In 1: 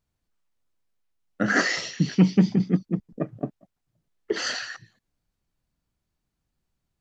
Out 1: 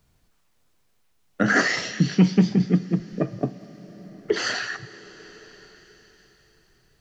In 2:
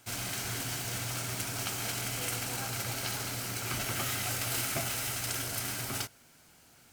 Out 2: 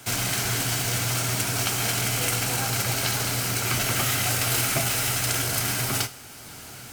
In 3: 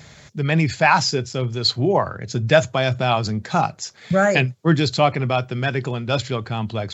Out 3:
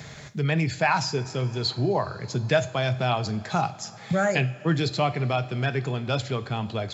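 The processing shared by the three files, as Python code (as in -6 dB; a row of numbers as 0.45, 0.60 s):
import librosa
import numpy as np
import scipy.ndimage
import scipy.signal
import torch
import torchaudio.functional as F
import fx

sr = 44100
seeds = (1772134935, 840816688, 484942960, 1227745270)

y = fx.rev_double_slope(x, sr, seeds[0], early_s=0.42, late_s=4.2, knee_db=-17, drr_db=11.5)
y = fx.band_squash(y, sr, depth_pct=40)
y = y * 10.0 ** (-26 / 20.0) / np.sqrt(np.mean(np.square(y)))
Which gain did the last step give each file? +2.5, +9.0, -6.5 dB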